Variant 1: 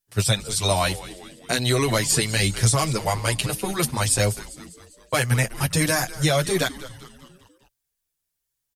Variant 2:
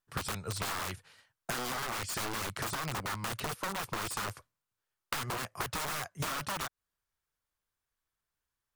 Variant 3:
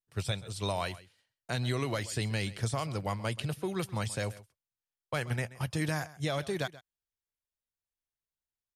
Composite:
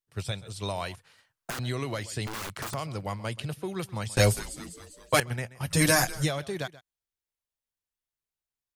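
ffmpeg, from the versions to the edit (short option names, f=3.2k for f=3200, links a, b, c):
-filter_complex "[1:a]asplit=2[a][b];[0:a]asplit=2[c][d];[2:a]asplit=5[e][f][g][h][i];[e]atrim=end=0.952[j];[a]atrim=start=0.948:end=1.592[k];[f]atrim=start=1.588:end=2.272[l];[b]atrim=start=2.268:end=2.742[m];[g]atrim=start=2.738:end=4.172[n];[c]atrim=start=4.168:end=5.202[o];[h]atrim=start=5.198:end=5.86[p];[d]atrim=start=5.62:end=6.34[q];[i]atrim=start=6.1[r];[j][k]acrossfade=d=0.004:c1=hsin:c2=hsin[s];[s][l]acrossfade=d=0.004:c1=hsin:c2=hsin[t];[t][m]acrossfade=d=0.004:c1=hsin:c2=hsin[u];[u][n]acrossfade=d=0.004:c1=hsin:c2=hsin[v];[v][o]acrossfade=d=0.004:c1=hsin:c2=hsin[w];[w][p]acrossfade=d=0.004:c1=hsin:c2=hsin[x];[x][q]acrossfade=d=0.24:c1=tri:c2=tri[y];[y][r]acrossfade=d=0.24:c1=tri:c2=tri"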